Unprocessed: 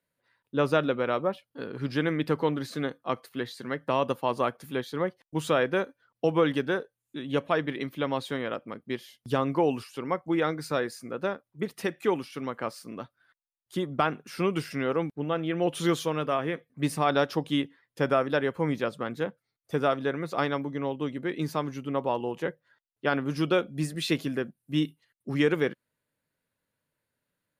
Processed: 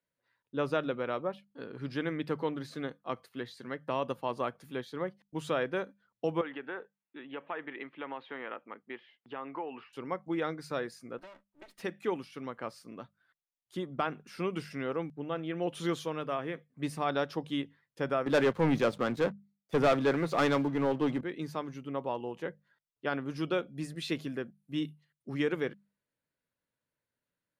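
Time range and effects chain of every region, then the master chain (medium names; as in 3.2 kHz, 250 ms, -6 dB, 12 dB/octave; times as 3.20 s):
6.41–9.93 s: compression 4:1, threshold -27 dBFS + cabinet simulation 330–2900 Hz, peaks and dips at 580 Hz -4 dB, 870 Hz +5 dB, 1.3 kHz +3 dB, 1.9 kHz +4 dB, 2.7 kHz +3 dB
11.18–11.80 s: comb filter that takes the minimum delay 3.2 ms + bass shelf 250 Hz -10 dB + compression 4:1, threshold -41 dBFS
18.26–21.21 s: waveshaping leveller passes 3 + three bands expanded up and down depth 40%
whole clip: treble shelf 10 kHz -8.5 dB; hum notches 50/100/150/200 Hz; trim -6.5 dB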